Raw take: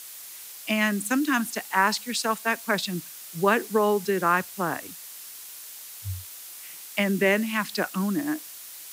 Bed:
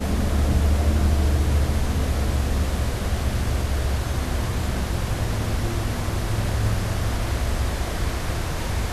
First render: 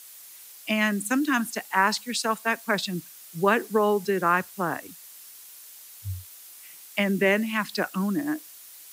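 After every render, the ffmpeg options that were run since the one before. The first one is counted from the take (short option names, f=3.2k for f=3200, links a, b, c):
-af "afftdn=nr=6:nf=-42"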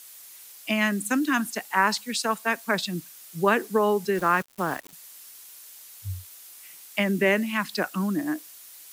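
-filter_complex "[0:a]asettb=1/sr,asplit=3[a][b][c];[a]atrim=end=4.154[d];[b]atrim=start=4.15:end=4.93,asetpts=PTS-STARTPTS,afade=t=in:d=0.004:c=qsin,afade=t=out:st=0.776:d=0.004:c=qsin,aeval=exprs='val(0)*gte(abs(val(0)),0.015)':c=same[e];[c]atrim=start=4.926[f];[d][e]acrossfade=d=0.004:c1=hsin:c2=qsin[g];[g][f]acrossfade=d=0.004:c1=qsin:c2=hsin"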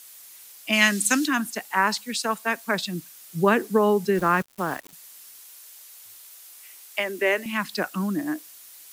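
-filter_complex "[0:a]asplit=3[a][b][c];[a]afade=t=out:st=0.72:d=0.02[d];[b]equalizer=f=5.2k:t=o:w=2.5:g=14,afade=t=in:st=0.72:d=0.02,afade=t=out:st=1.26:d=0.02[e];[c]afade=t=in:st=1.26:d=0.02[f];[d][e][f]amix=inputs=3:normalize=0,asettb=1/sr,asplit=3[g][h][i];[g]atrim=end=3.294[j];[h]atrim=start=3.29:end=4.48,asetpts=PTS-STARTPTS,afade=t=in:d=0.004:c=qsin,afade=t=out:st=1.186:d=0.004:c=qsin,lowshelf=f=310:g=7[k];[i]atrim=start=4.476[l];[j][k]acrossfade=d=0.004:c1=hsin:c2=qsin[m];[m][l]acrossfade=d=0.004:c1=qsin:c2=hsin,asettb=1/sr,asplit=3[n][o][p];[n]atrim=end=5.404[q];[o]atrim=start=5.4:end=7.46,asetpts=PTS-STARTPTS,afade=t=in:d=0.004:c=qsin,afade=t=out:st=2.056:d=0.004:c=qsin,highpass=f=330:w=0.5412,highpass=f=330:w=1.3066[r];[p]atrim=start=7.456[s];[q][r]acrossfade=d=0.004:c1=hsin:c2=qsin[t];[t][s]acrossfade=d=0.004:c1=qsin:c2=hsin"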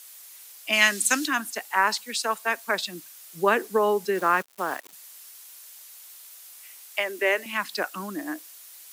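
-af "highpass=380"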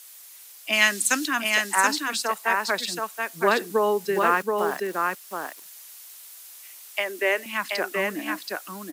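-af "aecho=1:1:727:0.668"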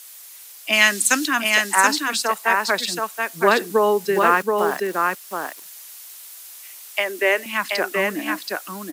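-af "volume=4.5dB,alimiter=limit=-1dB:level=0:latency=1"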